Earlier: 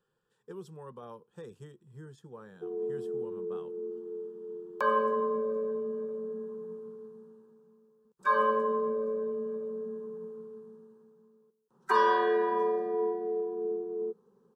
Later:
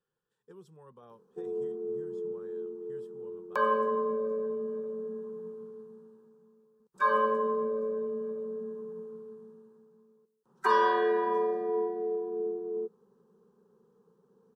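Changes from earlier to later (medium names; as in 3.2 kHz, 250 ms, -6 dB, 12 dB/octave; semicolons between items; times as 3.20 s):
speech -8.0 dB; background: entry -1.25 s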